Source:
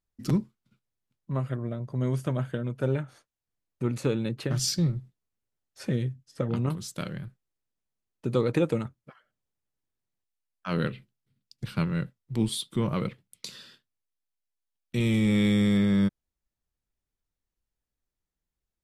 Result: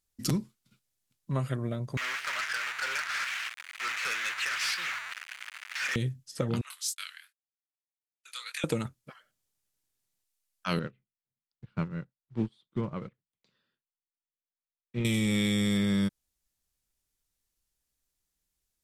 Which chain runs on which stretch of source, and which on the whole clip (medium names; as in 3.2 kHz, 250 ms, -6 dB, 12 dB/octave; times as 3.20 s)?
1.97–5.96 s: one-bit delta coder 64 kbps, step -32 dBFS + Butterworth band-pass 1.8 kHz, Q 1.4 + waveshaping leveller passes 3
6.61–8.64 s: gate -45 dBFS, range -35 dB + high-pass 1.5 kHz 24 dB/octave + chorus 2.6 Hz, delay 19.5 ms, depth 6.2 ms
10.79–15.05 s: block-companded coder 5-bit + low-pass 1.5 kHz + upward expansion 2.5:1, over -38 dBFS
whole clip: peaking EQ 10 kHz +12.5 dB 2.9 oct; compression, threshold -24 dBFS